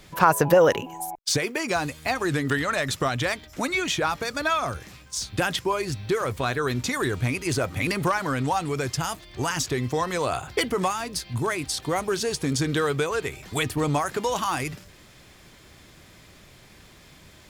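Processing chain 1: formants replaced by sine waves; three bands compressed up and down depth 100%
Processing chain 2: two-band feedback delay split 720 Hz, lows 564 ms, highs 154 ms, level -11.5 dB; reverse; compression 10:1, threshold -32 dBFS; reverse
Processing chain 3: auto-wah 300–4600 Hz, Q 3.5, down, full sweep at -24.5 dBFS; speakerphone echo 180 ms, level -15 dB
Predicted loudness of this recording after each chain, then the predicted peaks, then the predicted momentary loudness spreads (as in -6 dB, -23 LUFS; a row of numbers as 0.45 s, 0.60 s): -27.0 LUFS, -35.5 LUFS, -35.5 LUFS; -12.0 dBFS, -21.0 dBFS, -14.5 dBFS; 11 LU, 9 LU, 10 LU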